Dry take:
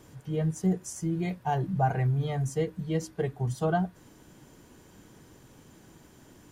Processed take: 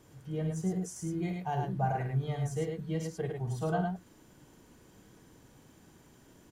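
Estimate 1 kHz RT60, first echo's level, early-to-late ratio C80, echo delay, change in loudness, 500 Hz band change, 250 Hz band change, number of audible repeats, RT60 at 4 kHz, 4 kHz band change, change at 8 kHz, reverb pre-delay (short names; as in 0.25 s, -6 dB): none, -9.0 dB, none, 51 ms, -4.5 dB, -4.5 dB, -4.0 dB, 2, none, -4.0 dB, -4.5 dB, none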